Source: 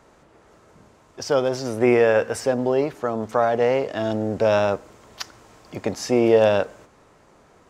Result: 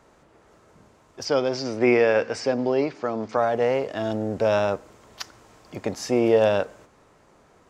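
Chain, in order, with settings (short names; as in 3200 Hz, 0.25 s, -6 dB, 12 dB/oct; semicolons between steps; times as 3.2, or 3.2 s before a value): 1.25–3.37 speaker cabinet 110–6700 Hz, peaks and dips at 290 Hz +4 dB, 2300 Hz +6 dB, 4800 Hz +8 dB; gain -2.5 dB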